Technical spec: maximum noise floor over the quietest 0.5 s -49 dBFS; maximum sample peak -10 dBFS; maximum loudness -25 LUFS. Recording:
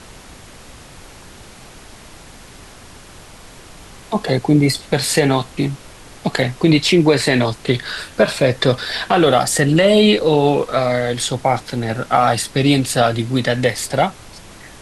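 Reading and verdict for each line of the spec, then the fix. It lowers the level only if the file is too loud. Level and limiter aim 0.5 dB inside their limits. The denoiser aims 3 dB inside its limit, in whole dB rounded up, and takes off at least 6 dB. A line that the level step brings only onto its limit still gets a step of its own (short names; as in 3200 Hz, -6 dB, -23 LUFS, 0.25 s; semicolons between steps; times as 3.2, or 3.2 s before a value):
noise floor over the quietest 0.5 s -40 dBFS: fail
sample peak -2.5 dBFS: fail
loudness -16.5 LUFS: fail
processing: denoiser 6 dB, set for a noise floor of -40 dBFS; gain -9 dB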